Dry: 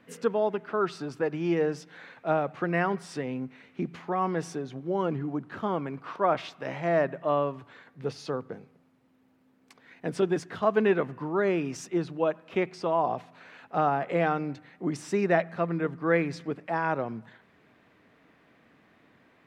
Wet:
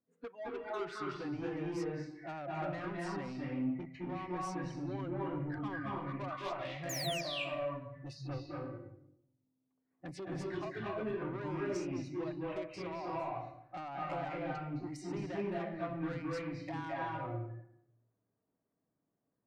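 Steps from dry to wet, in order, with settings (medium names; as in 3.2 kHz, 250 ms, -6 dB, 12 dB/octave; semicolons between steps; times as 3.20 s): level-controlled noise filter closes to 730 Hz, open at -26 dBFS; spectral noise reduction 25 dB; compression 10:1, threshold -32 dBFS, peak gain reduction 14 dB; painted sound fall, 6.89–7.21 s, 2.3–7.3 kHz -29 dBFS; saturation -35 dBFS, distortion -10 dB; reverberation RT60 0.75 s, pre-delay 208 ms, DRR -4.5 dB; trim -4 dB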